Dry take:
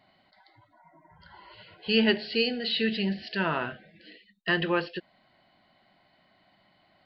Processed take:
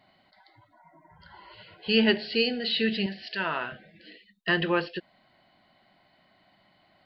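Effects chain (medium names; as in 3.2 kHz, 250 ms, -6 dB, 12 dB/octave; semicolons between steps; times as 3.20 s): 3.06–3.72 s: bass shelf 420 Hz -11.5 dB; trim +1 dB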